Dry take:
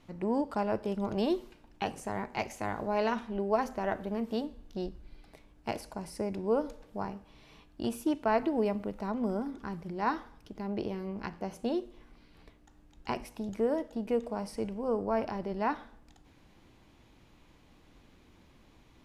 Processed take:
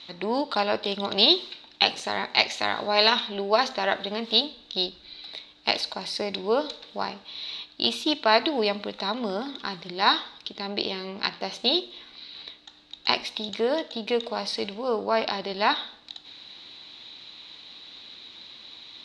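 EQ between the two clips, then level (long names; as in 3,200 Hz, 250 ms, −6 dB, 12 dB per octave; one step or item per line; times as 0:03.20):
high-pass filter 520 Hz 6 dB per octave
low-pass with resonance 3,900 Hz, resonance Q 11
high-shelf EQ 2,400 Hz +9.5 dB
+7.5 dB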